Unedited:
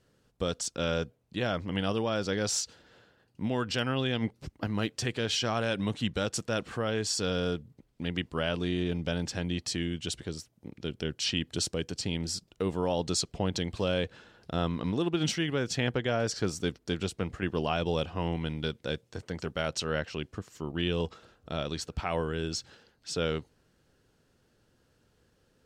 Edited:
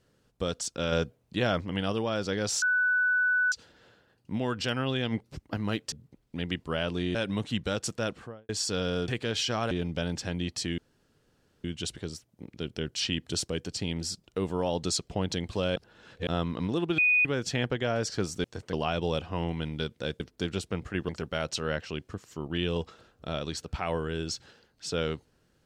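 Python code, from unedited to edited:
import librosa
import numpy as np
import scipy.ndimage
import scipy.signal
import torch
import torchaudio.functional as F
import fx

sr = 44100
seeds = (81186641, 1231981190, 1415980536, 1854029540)

y = fx.studio_fade_out(x, sr, start_s=6.51, length_s=0.48)
y = fx.edit(y, sr, fx.clip_gain(start_s=0.92, length_s=0.69, db=3.5),
    fx.insert_tone(at_s=2.62, length_s=0.9, hz=1490.0, db=-22.0),
    fx.swap(start_s=5.02, length_s=0.63, other_s=7.58, other_length_s=1.23),
    fx.insert_room_tone(at_s=9.88, length_s=0.86),
    fx.reverse_span(start_s=14.0, length_s=0.51),
    fx.bleep(start_s=15.22, length_s=0.27, hz=2480.0, db=-19.5),
    fx.swap(start_s=16.68, length_s=0.89, other_s=19.04, other_length_s=0.29), tone=tone)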